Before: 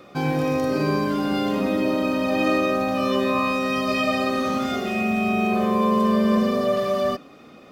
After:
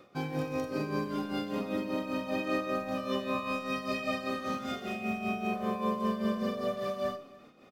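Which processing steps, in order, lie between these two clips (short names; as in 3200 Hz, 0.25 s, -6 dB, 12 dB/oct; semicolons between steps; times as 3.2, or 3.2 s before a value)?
tremolo 5.1 Hz, depth 65%; echo 0.289 s -21 dB; Schroeder reverb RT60 0.45 s, combs from 30 ms, DRR 11.5 dB; gain -8.5 dB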